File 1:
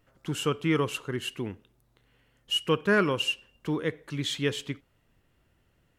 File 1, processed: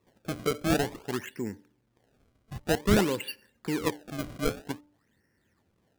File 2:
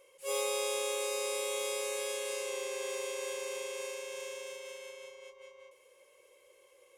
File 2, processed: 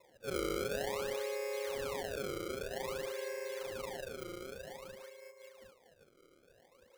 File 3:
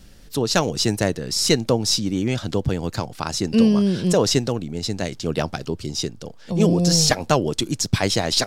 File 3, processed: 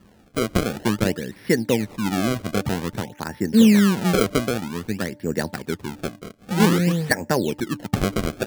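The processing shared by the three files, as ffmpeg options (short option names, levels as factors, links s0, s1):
-af "highpass=100,equalizer=f=140:t=q:w=4:g=-6,equalizer=f=210:t=q:w=4:g=4,equalizer=f=680:t=q:w=4:g=-7,equalizer=f=1200:t=q:w=4:g=-10,equalizer=f=1800:t=q:w=4:g=10,lowpass=f=2100:w=0.5412,lowpass=f=2100:w=1.3066,acrusher=samples=28:mix=1:aa=0.000001:lfo=1:lforange=44.8:lforate=0.52,bandreject=f=294.9:t=h:w=4,bandreject=f=589.8:t=h:w=4,bandreject=f=884.7:t=h:w=4"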